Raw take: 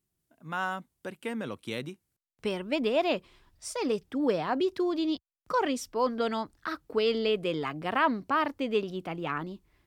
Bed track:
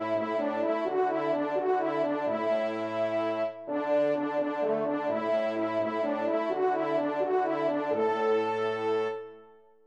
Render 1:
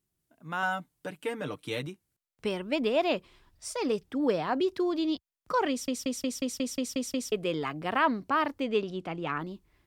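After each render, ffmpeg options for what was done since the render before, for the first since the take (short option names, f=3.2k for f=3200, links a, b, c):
-filter_complex "[0:a]asettb=1/sr,asplit=3[a][b][c];[a]atrim=end=0.624[d];[b]atrim=start=0.62:end=1.87,asetpts=PTS-STARTPTS,afade=t=in:d=0.004:c=qsin,afade=t=out:st=1.246:d=0.004:c=qsin,aecho=1:1:6.7:0.7,atrim=end_sample=55125[e];[c]atrim=start=1.866[f];[d][e]acrossfade=d=0.004:c1=hsin:c2=qsin[g];[g][f]acrossfade=d=0.004:c1=qsin:c2=hsin,asettb=1/sr,asplit=3[h][i][j];[h]atrim=end=8.644[k];[i]atrim=start=8.64:end=9.4,asetpts=PTS-STARTPTS,afade=t=in:d=0.004:c=qsin,afade=t=out:st=0.756:d=0.004:c=qsin,lowpass=8.7k[l];[j]atrim=start=9.396[m];[k][l]acrossfade=d=0.004:c1=hsin:c2=qsin[n];[n][m]acrossfade=d=0.004:c1=qsin:c2=hsin,asplit=10[o][p][q][r][s][t][u][v][w][x];[o]atrim=end=5.882[y];[p]atrim=start=5.698:end=5.882[z];[q]atrim=start=5.698:end=5.882[aa];[r]atrim=start=5.698:end=5.882[ab];[s]atrim=start=5.698:end=5.882[ac];[t]atrim=start=5.698:end=5.882[ad];[u]atrim=start=5.698:end=5.882[ae];[v]atrim=start=5.698:end=5.882[af];[w]atrim=start=5.698:end=5.882[ag];[x]atrim=start=7.318[ah];[y][z]acrossfade=d=0.004:c1=hsin:c2=hsin[ai];[ai][aa]acrossfade=d=0.004:c1=hsin:c2=hsin[aj];[aj][ab]acrossfade=d=0.004:c1=hsin:c2=hsin[ak];[ak][ac]acrossfade=d=0.004:c1=hsin:c2=hsin[al];[al][ad]acrossfade=d=0.004:c1=hsin:c2=hsin[am];[am][ae]acrossfade=d=0.004:c1=hsin:c2=hsin[an];[an][af]acrossfade=d=0.004:c1=hsin:c2=hsin[ao];[ao][ag]acrossfade=d=0.004:c1=hsin:c2=hsin[ap];[ap][ah]acrossfade=d=0.004:c1=hsin:c2=hsin"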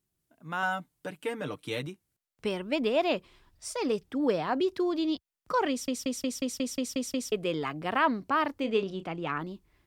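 -filter_complex "[0:a]asettb=1/sr,asplit=3[a][b][c];[a]atrim=end=8.584[d];[b]atrim=start=8.58:end=9.04,asetpts=PTS-STARTPTS,afade=t=in:d=0.004:c=qsin,afade=t=out:st=0.456:d=0.004:c=qsin,asplit=2[e][f];[f]adelay=31,volume=-10.5dB[g];[e][g]amix=inputs=2:normalize=0,atrim=end_sample=20286[h];[c]atrim=start=9.036[i];[d][h]acrossfade=d=0.004:c1=hsin:c2=qsin[j];[j][i]acrossfade=d=0.004:c1=qsin:c2=hsin"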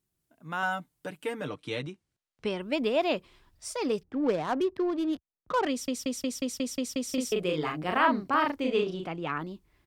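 -filter_complex "[0:a]asettb=1/sr,asplit=3[a][b][c];[a]atrim=end=1.474[d];[b]atrim=start=1.47:end=2.6,asetpts=PTS-STARTPTS,afade=t=in:d=0.004:c=qsin,afade=t=out:st=1.126:d=0.004:c=qsin,lowpass=6.5k[e];[c]atrim=start=2.596[f];[d][e]acrossfade=d=0.004:c1=hsin:c2=qsin[g];[g][f]acrossfade=d=0.004:c1=qsin:c2=hsin,asettb=1/sr,asplit=3[h][i][j];[h]atrim=end=4.034[k];[i]atrim=start=4.03:end=5.67,asetpts=PTS-STARTPTS,afade=t=in:d=0.004:c=qsin,afade=t=out:st=1.636:d=0.004:c=qsin,adynamicsmooth=sensitivity=5:basefreq=840[l];[j]atrim=start=5.666[m];[k][l]acrossfade=d=0.004:c1=hsin:c2=qsin[n];[n][m]acrossfade=d=0.004:c1=qsin:c2=hsin,asplit=3[o][p][q];[o]afade=t=out:st=7.08:d=0.02[r];[p]asplit=2[s][t];[t]adelay=39,volume=-3dB[u];[s][u]amix=inputs=2:normalize=0,afade=t=in:st=7.08:d=0.02,afade=t=out:st=9.06:d=0.02[v];[q]afade=t=in:st=9.06:d=0.02[w];[r][v][w]amix=inputs=3:normalize=0"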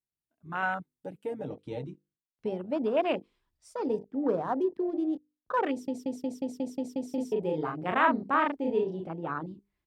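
-af "bandreject=f=50:t=h:w=6,bandreject=f=100:t=h:w=6,bandreject=f=150:t=h:w=6,bandreject=f=200:t=h:w=6,bandreject=f=250:t=h:w=6,bandreject=f=300:t=h:w=6,bandreject=f=350:t=h:w=6,bandreject=f=400:t=h:w=6,bandreject=f=450:t=h:w=6,bandreject=f=500:t=h:w=6,afwtdn=0.0224"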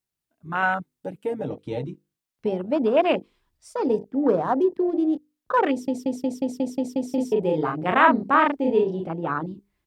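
-af "volume=7.5dB"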